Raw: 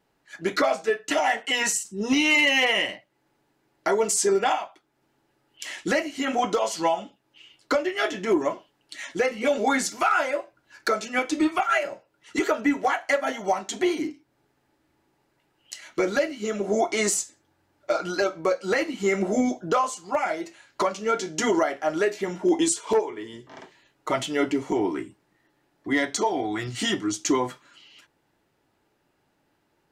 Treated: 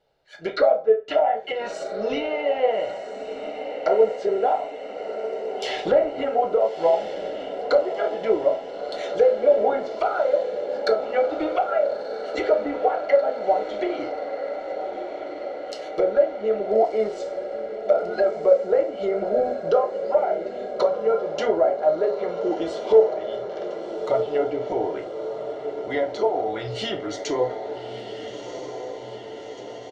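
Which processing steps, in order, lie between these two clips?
ten-band graphic EQ 125 Hz -3 dB, 250 Hz -11 dB, 500 Hz +11 dB, 1 kHz -5 dB, 2 kHz -4 dB, 4 kHz +8 dB, 8 kHz -4 dB; 5.63–6.25 s: power-law waveshaper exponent 0.7; treble shelf 5.3 kHz -12 dB; comb 1.4 ms, depth 37%; low-pass that closes with the level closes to 970 Hz, closed at -20 dBFS; echo that smears into a reverb 1337 ms, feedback 68%, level -9.5 dB; reverberation RT60 0.35 s, pre-delay 8 ms, DRR 8 dB

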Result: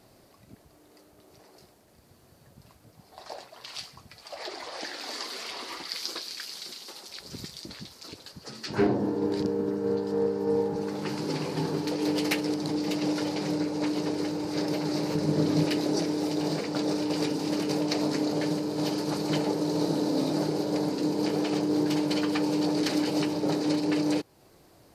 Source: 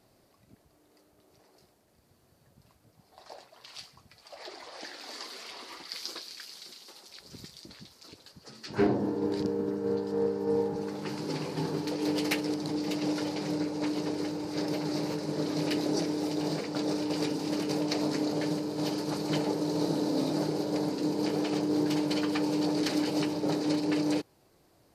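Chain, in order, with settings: in parallel at +2 dB: compression, threshold -40 dBFS, peak gain reduction 18 dB; 15.15–15.65 s: on the sum: bass shelf 230 Hz +10.5 dB

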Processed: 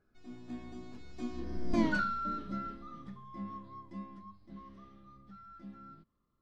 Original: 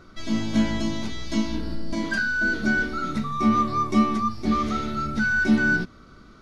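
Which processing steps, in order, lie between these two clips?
Doppler pass-by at 1.82 s, 35 m/s, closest 4.1 m; treble shelf 2.7 kHz -11 dB

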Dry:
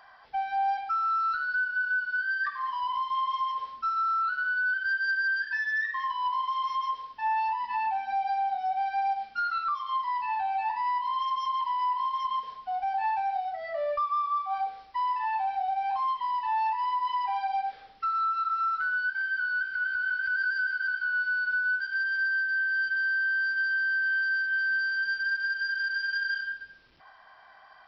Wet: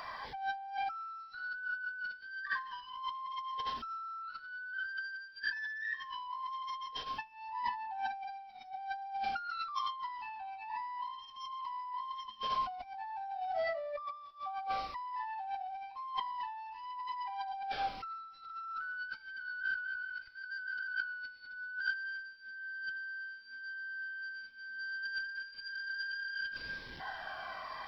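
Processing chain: on a send at -19 dB: reverberation RT60 2.1 s, pre-delay 4 ms; on the sum: compressor with a negative ratio -41 dBFS, ratio -1; 9.49–9.91 s: treble shelf 4.5 kHz +10 dB; Shepard-style phaser falling 0.94 Hz; trim +3 dB

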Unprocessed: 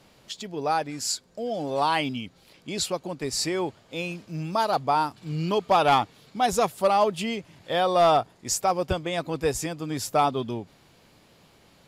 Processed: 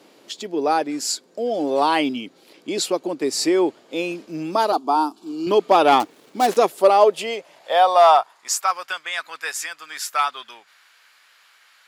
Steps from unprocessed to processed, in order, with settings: 6.00–6.57 s: dead-time distortion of 0.11 ms; high-pass sweep 320 Hz -> 1.5 kHz, 6.56–8.92 s; 4.72–5.47 s: static phaser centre 530 Hz, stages 6; trim +3.5 dB

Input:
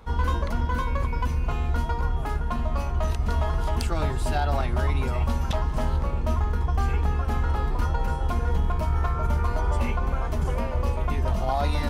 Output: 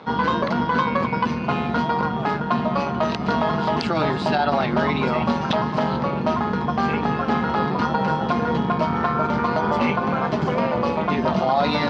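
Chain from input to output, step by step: AM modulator 160 Hz, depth 35%; elliptic band-pass 160–4600 Hz, stop band 70 dB; loudness maximiser +22 dB; trim -9 dB

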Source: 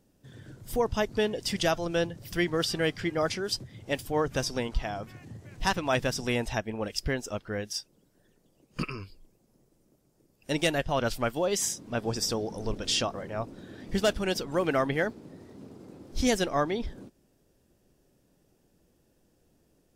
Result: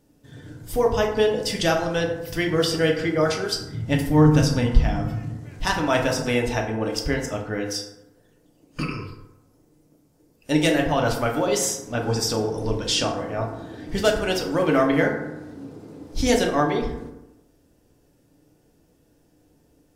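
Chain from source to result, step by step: 3.68–5.29 s: resonant low shelf 270 Hz +8.5 dB, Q 1.5; FDN reverb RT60 0.94 s, low-frequency decay 0.95×, high-frequency decay 0.45×, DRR 0 dB; trim +3 dB

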